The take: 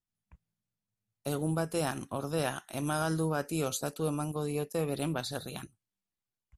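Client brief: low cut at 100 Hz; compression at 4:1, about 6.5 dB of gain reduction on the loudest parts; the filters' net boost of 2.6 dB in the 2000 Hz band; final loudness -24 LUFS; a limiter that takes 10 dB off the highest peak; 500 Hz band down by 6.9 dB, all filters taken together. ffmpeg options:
-af "highpass=100,equalizer=f=500:t=o:g=-8.5,equalizer=f=2k:t=o:g=4.5,acompressor=threshold=-36dB:ratio=4,volume=19.5dB,alimiter=limit=-12.5dB:level=0:latency=1"

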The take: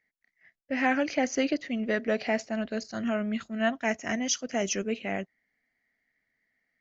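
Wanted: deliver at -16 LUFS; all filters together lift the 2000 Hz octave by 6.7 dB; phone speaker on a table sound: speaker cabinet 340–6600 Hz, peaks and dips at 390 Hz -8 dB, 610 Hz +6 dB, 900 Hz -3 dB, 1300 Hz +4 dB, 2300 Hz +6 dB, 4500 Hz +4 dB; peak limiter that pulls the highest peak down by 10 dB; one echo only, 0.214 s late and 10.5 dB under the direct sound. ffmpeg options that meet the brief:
-af "equalizer=f=2k:t=o:g=4.5,alimiter=limit=-21.5dB:level=0:latency=1,highpass=f=340:w=0.5412,highpass=f=340:w=1.3066,equalizer=f=390:t=q:w=4:g=-8,equalizer=f=610:t=q:w=4:g=6,equalizer=f=900:t=q:w=4:g=-3,equalizer=f=1.3k:t=q:w=4:g=4,equalizer=f=2.3k:t=q:w=4:g=6,equalizer=f=4.5k:t=q:w=4:g=4,lowpass=f=6.6k:w=0.5412,lowpass=f=6.6k:w=1.3066,aecho=1:1:214:0.299,volume=15.5dB"

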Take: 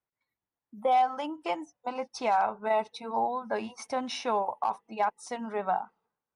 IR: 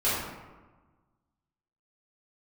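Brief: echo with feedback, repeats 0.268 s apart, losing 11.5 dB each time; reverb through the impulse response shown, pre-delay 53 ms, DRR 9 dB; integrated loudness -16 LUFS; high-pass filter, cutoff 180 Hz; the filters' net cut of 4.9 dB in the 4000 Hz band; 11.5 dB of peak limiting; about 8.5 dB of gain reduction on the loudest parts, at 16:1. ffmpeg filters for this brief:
-filter_complex "[0:a]highpass=180,equalizer=f=4k:t=o:g=-7,acompressor=threshold=-29dB:ratio=16,alimiter=level_in=7dB:limit=-24dB:level=0:latency=1,volume=-7dB,aecho=1:1:268|536|804:0.266|0.0718|0.0194,asplit=2[a][b];[1:a]atrim=start_sample=2205,adelay=53[c];[b][c]afir=irnorm=-1:irlink=0,volume=-21.5dB[d];[a][d]amix=inputs=2:normalize=0,volume=24dB"

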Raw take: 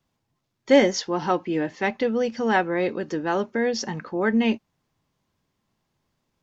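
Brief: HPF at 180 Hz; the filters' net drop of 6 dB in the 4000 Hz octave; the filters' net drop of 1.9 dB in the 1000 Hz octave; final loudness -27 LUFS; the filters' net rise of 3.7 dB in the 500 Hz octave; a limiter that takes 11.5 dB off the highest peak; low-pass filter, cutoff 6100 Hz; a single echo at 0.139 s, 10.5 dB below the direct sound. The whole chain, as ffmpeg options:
-af "highpass=180,lowpass=6.1k,equalizer=f=500:t=o:g=5.5,equalizer=f=1k:t=o:g=-5,equalizer=f=4k:t=o:g=-7.5,alimiter=limit=-15dB:level=0:latency=1,aecho=1:1:139:0.299,volume=-2dB"

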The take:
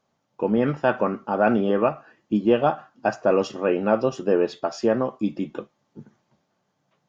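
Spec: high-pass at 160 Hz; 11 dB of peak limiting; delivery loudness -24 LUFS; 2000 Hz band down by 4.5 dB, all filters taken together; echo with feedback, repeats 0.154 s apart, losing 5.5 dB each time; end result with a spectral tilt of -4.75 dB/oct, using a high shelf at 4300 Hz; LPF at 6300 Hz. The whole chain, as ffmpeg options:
-af "highpass=160,lowpass=6.3k,equalizer=f=2k:t=o:g=-8,highshelf=f=4.3k:g=4,alimiter=limit=-17.5dB:level=0:latency=1,aecho=1:1:154|308|462|616|770|924|1078:0.531|0.281|0.149|0.079|0.0419|0.0222|0.0118,volume=4dB"

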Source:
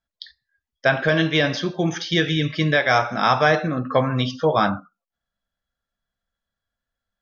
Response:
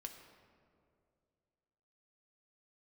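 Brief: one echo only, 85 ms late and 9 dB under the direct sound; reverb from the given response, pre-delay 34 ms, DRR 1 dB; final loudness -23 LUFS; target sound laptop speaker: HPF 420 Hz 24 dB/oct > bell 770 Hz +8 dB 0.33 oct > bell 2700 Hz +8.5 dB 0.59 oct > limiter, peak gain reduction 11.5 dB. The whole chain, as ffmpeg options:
-filter_complex "[0:a]aecho=1:1:85:0.355,asplit=2[a][b];[1:a]atrim=start_sample=2205,adelay=34[c];[b][c]afir=irnorm=-1:irlink=0,volume=3.5dB[d];[a][d]amix=inputs=2:normalize=0,highpass=f=420:w=0.5412,highpass=f=420:w=1.3066,equalizer=f=770:t=o:w=0.33:g=8,equalizer=f=2.7k:t=o:w=0.59:g=8.5,volume=-3dB,alimiter=limit=-13.5dB:level=0:latency=1"

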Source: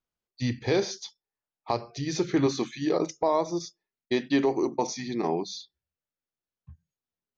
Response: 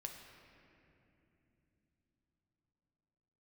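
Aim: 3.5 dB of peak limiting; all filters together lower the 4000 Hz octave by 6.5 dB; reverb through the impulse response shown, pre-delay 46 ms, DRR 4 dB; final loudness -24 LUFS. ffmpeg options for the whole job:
-filter_complex "[0:a]equalizer=f=4k:t=o:g=-8,alimiter=limit=-17dB:level=0:latency=1,asplit=2[a][b];[1:a]atrim=start_sample=2205,adelay=46[c];[b][c]afir=irnorm=-1:irlink=0,volume=-1dB[d];[a][d]amix=inputs=2:normalize=0,volume=5dB"

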